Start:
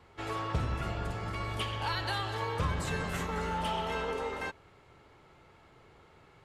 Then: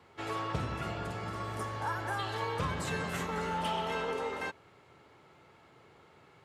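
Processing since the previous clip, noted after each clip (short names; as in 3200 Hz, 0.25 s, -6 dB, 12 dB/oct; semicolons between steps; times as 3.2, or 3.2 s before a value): HPF 110 Hz 12 dB/oct; spectral repair 1.33–2.17, 1800–5100 Hz before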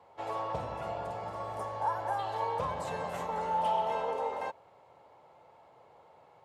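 band shelf 710 Hz +13.5 dB 1.3 oct; gain -7.5 dB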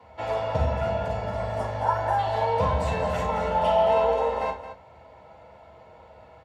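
tapped delay 41/220 ms -8/-11.5 dB; reverb RT60 0.10 s, pre-delay 3 ms, DRR 1.5 dB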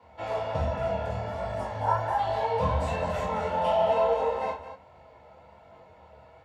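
chorus voices 2, 1.3 Hz, delay 24 ms, depth 3 ms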